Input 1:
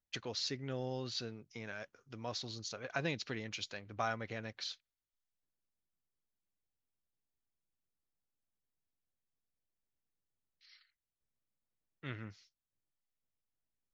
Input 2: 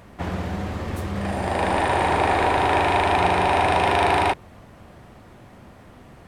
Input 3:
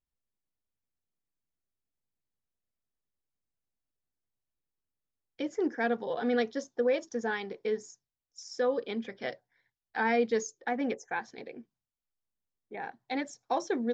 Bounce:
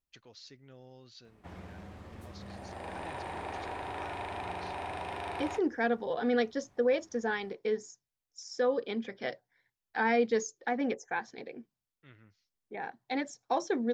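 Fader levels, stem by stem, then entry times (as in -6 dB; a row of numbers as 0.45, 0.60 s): -13.5, -19.5, 0.0 dB; 0.00, 1.25, 0.00 s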